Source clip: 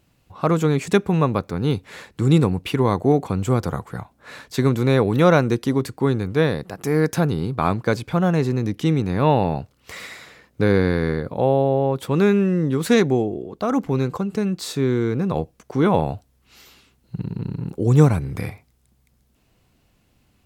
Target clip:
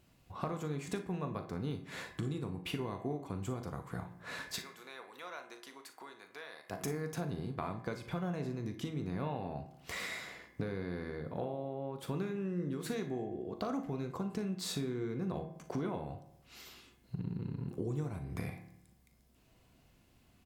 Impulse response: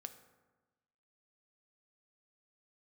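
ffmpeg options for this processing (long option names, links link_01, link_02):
-filter_complex "[0:a]acompressor=threshold=-30dB:ratio=12,asplit=3[link_01][link_02][link_03];[link_01]afade=type=out:start_time=4.57:duration=0.02[link_04];[link_02]highpass=950,afade=type=in:start_time=4.57:duration=0.02,afade=type=out:start_time=6.69:duration=0.02[link_05];[link_03]afade=type=in:start_time=6.69:duration=0.02[link_06];[link_04][link_05][link_06]amix=inputs=3:normalize=0,aecho=1:1:40|57:0.251|0.188[link_07];[1:a]atrim=start_sample=2205,asetrate=61740,aresample=44100[link_08];[link_07][link_08]afir=irnorm=-1:irlink=0,volume=3.5dB"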